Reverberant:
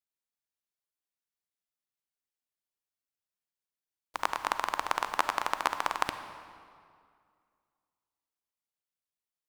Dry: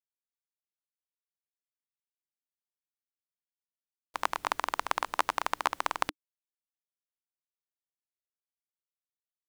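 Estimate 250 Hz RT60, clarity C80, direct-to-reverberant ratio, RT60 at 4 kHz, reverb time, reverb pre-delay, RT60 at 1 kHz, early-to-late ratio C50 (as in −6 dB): 2.3 s, 11.0 dB, 9.5 dB, 1.6 s, 2.2 s, 33 ms, 2.1 s, 10.0 dB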